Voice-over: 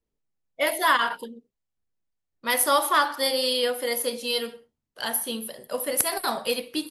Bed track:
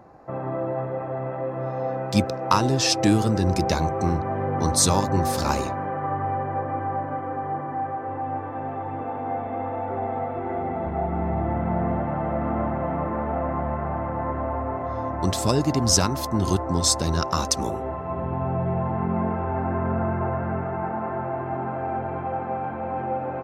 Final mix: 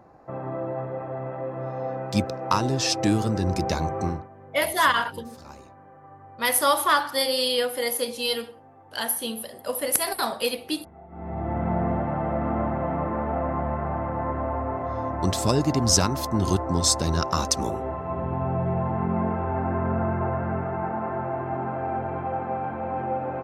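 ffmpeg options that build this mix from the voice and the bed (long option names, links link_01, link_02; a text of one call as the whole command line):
ffmpeg -i stem1.wav -i stem2.wav -filter_complex "[0:a]adelay=3950,volume=0.5dB[link_01];[1:a]volume=17.5dB,afade=type=out:start_time=4.04:duration=0.24:silence=0.125893,afade=type=in:start_time=11.09:duration=0.56:silence=0.0944061[link_02];[link_01][link_02]amix=inputs=2:normalize=0" out.wav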